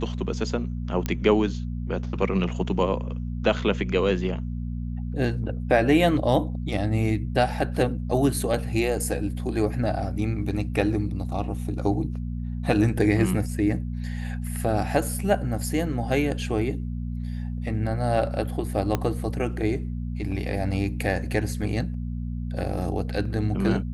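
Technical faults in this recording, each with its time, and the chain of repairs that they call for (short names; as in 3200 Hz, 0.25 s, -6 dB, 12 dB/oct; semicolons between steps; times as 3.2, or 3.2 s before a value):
hum 60 Hz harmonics 4 -30 dBFS
1.06 pop -12 dBFS
18.95 pop -10 dBFS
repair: de-click; de-hum 60 Hz, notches 4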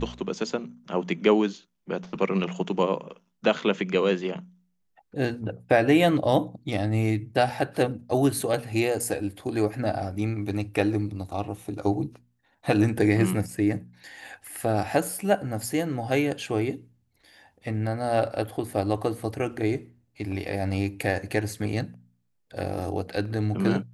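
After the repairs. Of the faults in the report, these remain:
18.95 pop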